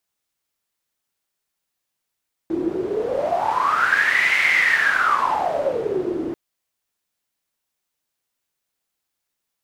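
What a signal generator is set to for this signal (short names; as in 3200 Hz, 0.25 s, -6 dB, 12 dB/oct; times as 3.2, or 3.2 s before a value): wind-like swept noise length 3.84 s, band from 330 Hz, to 2100 Hz, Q 12, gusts 1, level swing 7 dB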